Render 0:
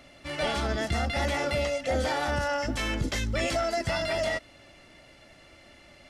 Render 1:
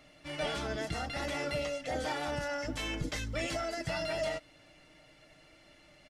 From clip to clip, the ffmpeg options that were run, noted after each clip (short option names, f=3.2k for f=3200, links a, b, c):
-af "aecho=1:1:6.5:0.54,volume=-7dB"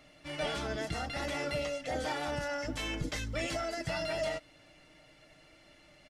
-af anull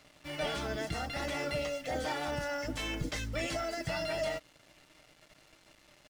-af "acrusher=bits=8:mix=0:aa=0.5"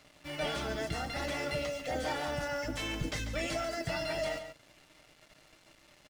-af "aecho=1:1:141:0.316"